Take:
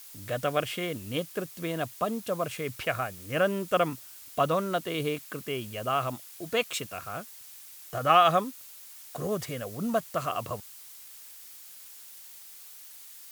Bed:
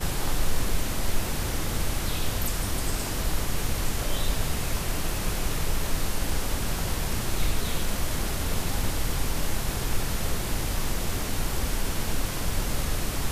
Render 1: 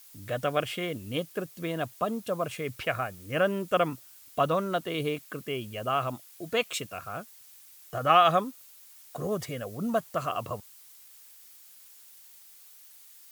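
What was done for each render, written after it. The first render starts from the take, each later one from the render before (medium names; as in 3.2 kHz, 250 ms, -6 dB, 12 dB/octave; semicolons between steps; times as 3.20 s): noise reduction 6 dB, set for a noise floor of -48 dBFS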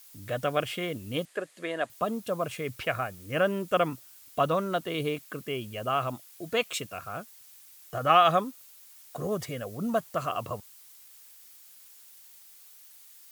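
1.25–1.90 s: cabinet simulation 340–9600 Hz, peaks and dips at 590 Hz +4 dB, 1.8 kHz +8 dB, 5.6 kHz -7 dB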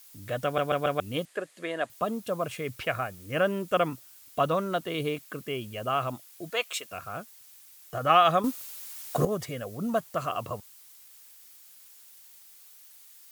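0.44 s: stutter in place 0.14 s, 4 plays; 6.50–6.91 s: high-pass 550 Hz; 8.44–9.25 s: gain +10.5 dB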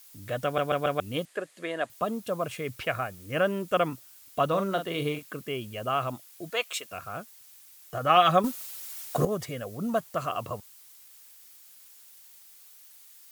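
4.48–5.30 s: doubling 41 ms -8 dB; 8.16–9.05 s: comb 5.3 ms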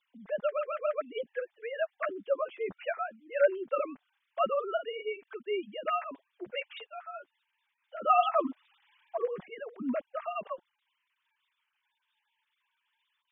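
formants replaced by sine waves; flange 0.2 Hz, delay 3.6 ms, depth 7.8 ms, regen +4%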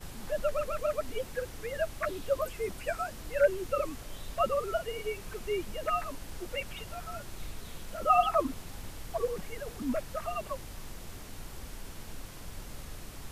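add bed -16 dB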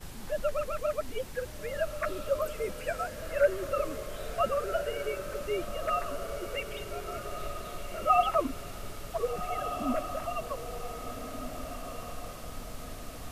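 echo that smears into a reverb 1558 ms, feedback 43%, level -7.5 dB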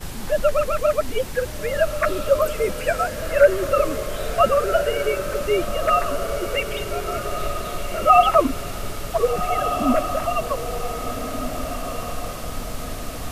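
trim +11.5 dB; peak limiter -3 dBFS, peak gain reduction 2 dB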